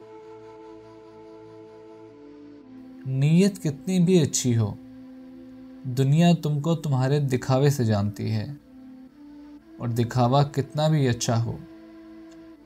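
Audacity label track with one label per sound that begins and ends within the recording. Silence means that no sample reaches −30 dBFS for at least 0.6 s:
3.060000	4.730000	sound
5.850000	8.530000	sound
9.810000	11.560000	sound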